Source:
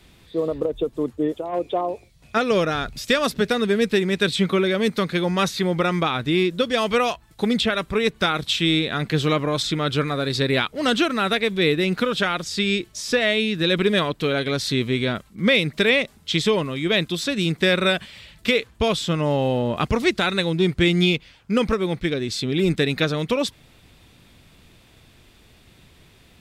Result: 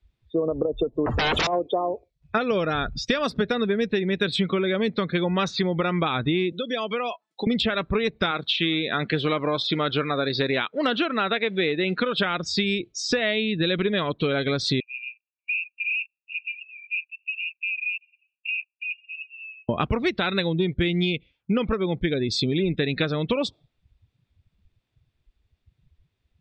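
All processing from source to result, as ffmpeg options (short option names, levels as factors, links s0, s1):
-filter_complex "[0:a]asettb=1/sr,asplit=3[s0][s1][s2];[s0]atrim=end=1.064[s3];[s1]atrim=start=1.06:end=1.47,asetpts=PTS-STARTPTS,afade=t=in:d=0.004:c=qsin,afade=t=out:st=0.406:d=0.004:c=qsin,equalizer=f=330:w=1.7:g=-2.5,acompressor=threshold=0.0501:ratio=10:attack=3.2:release=140:knee=1:detection=peak,aeval=exprs='0.0891*sin(PI/2*10*val(0)/0.0891)':c=same[s4];[s2]atrim=start=1.466[s5];[s3][s4]acrossfade=d=0.004:c1=hsin:c2=qsin[s6];[s6][s5]acrossfade=d=0.004:c1=qsin:c2=hsin,asettb=1/sr,asplit=3[s7][s8][s9];[s7]atrim=end=6.524[s10];[s8]atrim=start=6.52:end=7.47,asetpts=PTS-STARTPTS,afade=t=in:d=0.004:c=qsin,afade=t=out:st=0.946:d=0.004:c=qsin,highpass=f=210:w=0.5412,highpass=f=210:w=1.3066,acompressor=threshold=0.0224:ratio=2.5:attack=3.2:release=140:knee=1:detection=peak,highshelf=f=4300:g=6.5[s11];[s9]atrim=start=7.466[s12];[s10][s11]acrossfade=d=0.004:c1=hsin:c2=qsin[s13];[s13][s12]acrossfade=d=0.004:c1=qsin:c2=hsin,asettb=1/sr,asplit=3[s14][s15][s16];[s14]atrim=end=8.314[s17];[s15]atrim=start=8.31:end=12.18,asetpts=PTS-STARTPTS,afade=t=in:d=0.004:c=qsin,afade=t=out:st=3.866:d=0.004:c=qsin,acrusher=bits=4:mode=log:mix=0:aa=0.000001,acrossover=split=3900[s18][s19];[s19]acompressor=threshold=0.0224:ratio=4:attack=1:release=60[s20];[s18][s20]amix=inputs=2:normalize=0,highpass=f=280:p=1[s21];[s16]atrim=start=12.176[s22];[s17][s21]acrossfade=d=0.004:c1=hsin:c2=qsin[s23];[s23][s22]acrossfade=d=0.004:c1=qsin:c2=hsin,asettb=1/sr,asplit=3[s24][s25][s26];[s24]atrim=end=14.804[s27];[s25]atrim=start=14.8:end=19.69,asetpts=PTS-STARTPTS,afade=t=in:d=0.004:c=qsin,afade=t=out:st=4.886:d=0.004:c=qsin,asuperpass=centerf=2600:order=12:qfactor=5.5,acompressor=threshold=0.0316:ratio=2.5:attack=3.2:release=140:knee=1:detection=peak[s28];[s26]atrim=start=19.686[s29];[s27][s28]acrossfade=d=0.004:c1=hsin:c2=qsin[s30];[s30][s29]acrossfade=d=0.004:c1=qsin:c2=hsin,afftdn=nr=32:nf=-34,lowpass=6100,acompressor=threshold=0.0501:ratio=6,volume=1.88"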